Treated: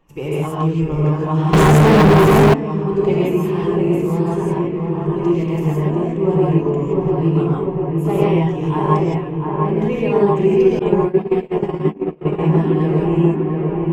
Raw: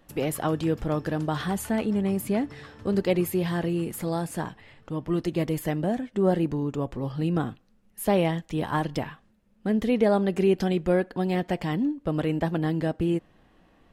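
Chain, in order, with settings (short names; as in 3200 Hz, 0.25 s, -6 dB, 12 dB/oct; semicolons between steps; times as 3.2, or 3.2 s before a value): bin magnitudes rounded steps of 15 dB; ripple EQ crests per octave 0.73, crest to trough 10 dB; dark delay 0.698 s, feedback 71%, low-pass 1900 Hz, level -3.5 dB; non-linear reverb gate 0.19 s rising, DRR -5.5 dB; 10.79–12.39 gate -13 dBFS, range -30 dB; high shelf 3500 Hz -10 dB; 1.53–2.54 sample leveller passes 5; gain -1 dB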